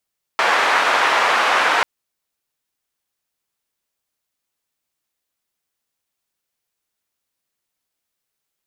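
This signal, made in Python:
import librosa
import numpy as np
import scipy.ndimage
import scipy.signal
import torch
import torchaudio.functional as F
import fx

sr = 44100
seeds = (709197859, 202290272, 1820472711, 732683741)

y = fx.band_noise(sr, seeds[0], length_s=1.44, low_hz=800.0, high_hz=1400.0, level_db=-16.5)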